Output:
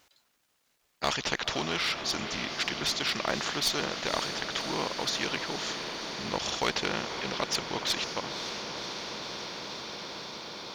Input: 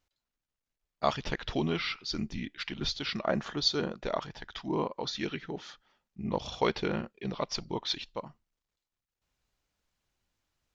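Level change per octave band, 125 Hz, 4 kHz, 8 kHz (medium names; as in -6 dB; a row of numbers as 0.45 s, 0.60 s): -3.5 dB, +5.5 dB, no reading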